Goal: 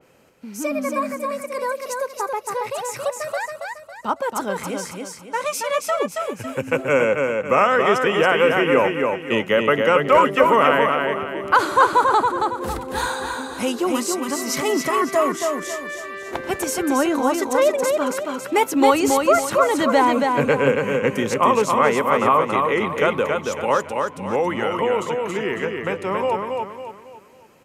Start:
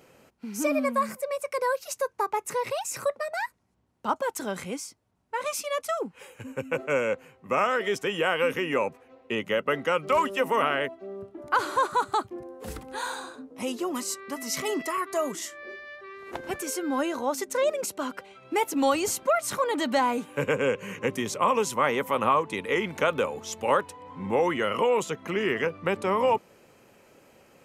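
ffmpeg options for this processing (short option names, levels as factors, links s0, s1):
-filter_complex "[0:a]dynaudnorm=f=320:g=31:m=2.51,asplit=2[s0][s1];[s1]aecho=0:1:276|552|828|1104|1380:0.631|0.24|0.0911|0.0346|0.0132[s2];[s0][s2]amix=inputs=2:normalize=0,adynamicequalizer=threshold=0.02:dfrequency=2800:dqfactor=0.7:tfrequency=2800:tqfactor=0.7:attack=5:release=100:ratio=0.375:range=3.5:mode=cutabove:tftype=highshelf,volume=1.12"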